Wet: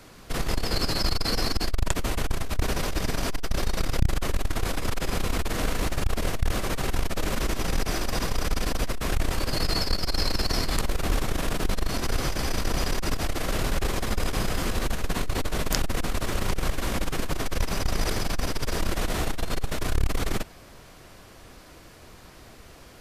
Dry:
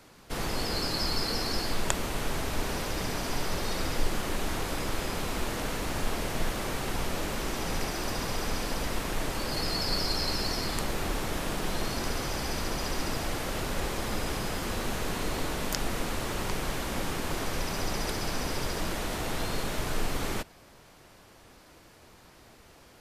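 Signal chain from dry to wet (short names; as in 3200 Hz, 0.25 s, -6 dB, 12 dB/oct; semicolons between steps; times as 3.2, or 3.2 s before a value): low shelf 77 Hz +6.5 dB; notch 870 Hz, Q 15; core saturation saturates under 240 Hz; gain +5.5 dB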